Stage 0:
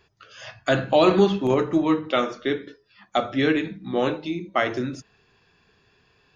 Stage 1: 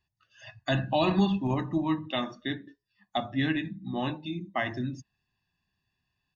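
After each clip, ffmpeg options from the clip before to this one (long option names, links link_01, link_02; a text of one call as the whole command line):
ffmpeg -i in.wav -af "afftdn=noise_reduction=15:noise_floor=-38,equalizer=frequency=1000:width=0.5:gain=-5.5,aecho=1:1:1.1:0.86,volume=-4.5dB" out.wav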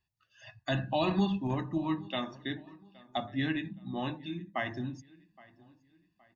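ffmpeg -i in.wav -filter_complex "[0:a]asplit=2[link_01][link_02];[link_02]adelay=819,lowpass=frequency=4100:poles=1,volume=-22.5dB,asplit=2[link_03][link_04];[link_04]adelay=819,lowpass=frequency=4100:poles=1,volume=0.4,asplit=2[link_05][link_06];[link_06]adelay=819,lowpass=frequency=4100:poles=1,volume=0.4[link_07];[link_01][link_03][link_05][link_07]amix=inputs=4:normalize=0,volume=-4dB" out.wav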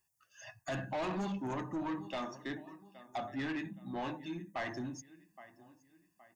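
ffmpeg -i in.wav -filter_complex "[0:a]aexciter=amount=14.5:drive=5.1:freq=5900,asplit=2[link_01][link_02];[link_02]highpass=frequency=720:poles=1,volume=16dB,asoftclip=type=tanh:threshold=-17dB[link_03];[link_01][link_03]amix=inputs=2:normalize=0,lowpass=frequency=1100:poles=1,volume=-6dB,asoftclip=type=tanh:threshold=-29dB,volume=-3.5dB" out.wav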